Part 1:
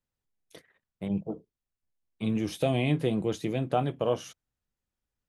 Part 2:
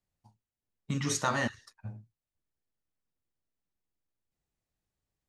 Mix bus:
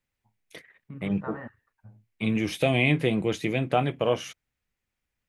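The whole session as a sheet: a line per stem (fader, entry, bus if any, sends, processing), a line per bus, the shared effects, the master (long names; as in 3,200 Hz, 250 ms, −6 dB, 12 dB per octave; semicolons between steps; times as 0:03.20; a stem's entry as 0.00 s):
+2.5 dB, 0.00 s, no send, parametric band 2,200 Hz +10.5 dB 0.8 octaves
−9.0 dB, 0.00 s, no send, low-pass filter 1,800 Hz 24 dB per octave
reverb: not used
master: no processing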